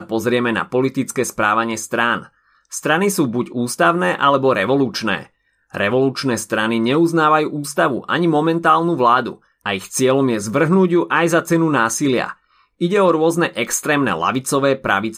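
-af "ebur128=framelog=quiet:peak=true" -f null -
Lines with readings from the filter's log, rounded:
Integrated loudness:
  I:         -17.1 LUFS
  Threshold: -27.5 LUFS
Loudness range:
  LRA:         2.2 LU
  Threshold: -37.3 LUFS
  LRA low:   -18.5 LUFS
  LRA high:  -16.4 LUFS
True peak:
  Peak:       -1.5 dBFS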